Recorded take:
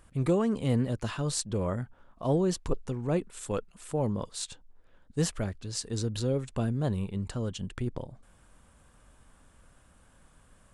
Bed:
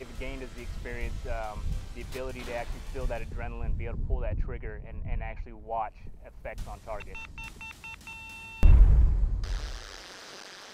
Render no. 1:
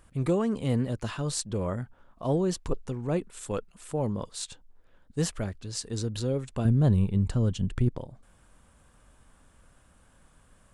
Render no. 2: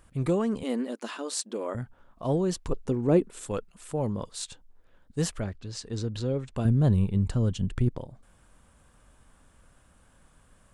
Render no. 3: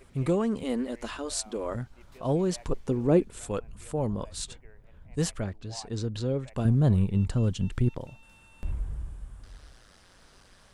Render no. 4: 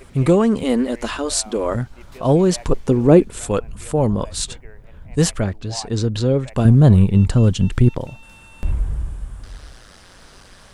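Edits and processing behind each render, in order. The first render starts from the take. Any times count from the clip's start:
6.65–7.89 s: bass shelf 260 Hz +11 dB
0.63–1.75 s: brick-wall FIR high-pass 210 Hz; 2.85–3.46 s: peaking EQ 330 Hz +9.5 dB 1.9 oct; 5.40–6.55 s: distance through air 73 m
add bed -15 dB
trim +11.5 dB; peak limiter -1 dBFS, peak gain reduction 1.5 dB

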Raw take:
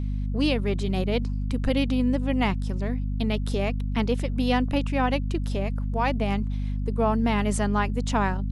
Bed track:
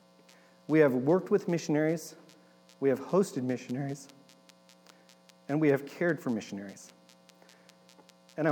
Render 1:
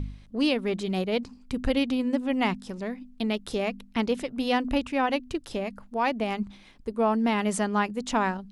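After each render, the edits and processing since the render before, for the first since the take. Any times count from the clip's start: de-hum 50 Hz, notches 5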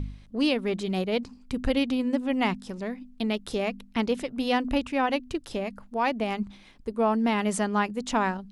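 no audible change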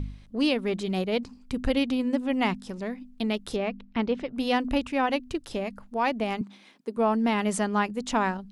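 3.56–4.34 s: distance through air 200 m; 6.41–6.97 s: high-pass 200 Hz 24 dB/octave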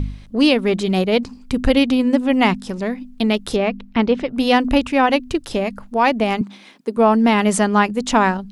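trim +10 dB

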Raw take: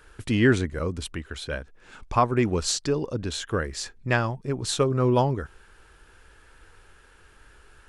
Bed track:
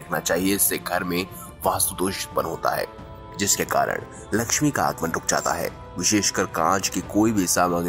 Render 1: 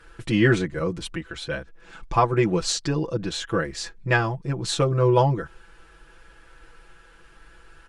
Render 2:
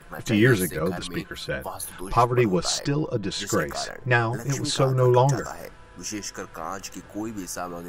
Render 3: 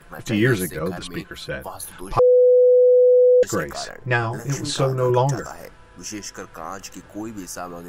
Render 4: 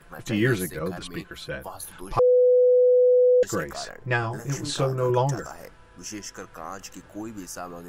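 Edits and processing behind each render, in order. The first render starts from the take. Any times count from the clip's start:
treble shelf 10 kHz -12 dB; comb 6 ms, depth 97%
add bed track -12.5 dB
2.19–3.43 s: bleep 498 Hz -10 dBFS; 4.20–5.10 s: doubling 28 ms -7.5 dB
trim -4 dB

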